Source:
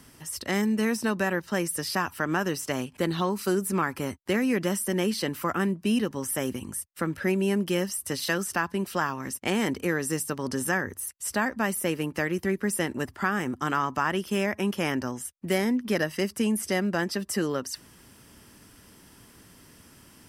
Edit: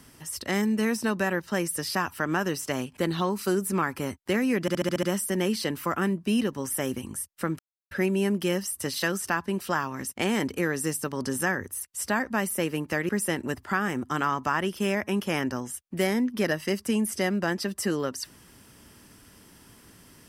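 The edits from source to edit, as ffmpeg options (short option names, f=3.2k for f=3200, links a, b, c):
-filter_complex "[0:a]asplit=9[a][b][c][d][e][f][g][h][i];[a]atrim=end=4.682[j];[b]atrim=start=4.608:end=4.682[k];[c]atrim=start=4.608:end=4.682[l];[d]atrim=start=4.608:end=4.682[m];[e]atrim=start=4.608:end=4.682[n];[f]atrim=start=4.608:end=4.682[o];[g]atrim=start=4.608:end=7.17,asetpts=PTS-STARTPTS,afade=t=out:st=2.558:d=0.004:c=hsin,apad=pad_dur=0.32[p];[h]atrim=start=7.17:end=12.352,asetpts=PTS-STARTPTS,afade=t=in:d=0.004:c=hsin[q];[i]atrim=start=12.598[r];[j][k]acrossfade=d=0.004:c1=hsin:c2=hsin[s];[s][l]acrossfade=d=0.004:c1=hsin:c2=hsin[t];[t][m]acrossfade=d=0.004:c1=hsin:c2=hsin[u];[u][n]acrossfade=d=0.004:c1=hsin:c2=hsin[v];[v][o]acrossfade=d=0.004:c1=hsin:c2=hsin[w];[p][q]concat=n=2:v=0:a=1[x];[w][x]acrossfade=d=0.004:c1=hsin:c2=hsin[y];[y][r]acrossfade=d=0.004:c1=hsin:c2=hsin"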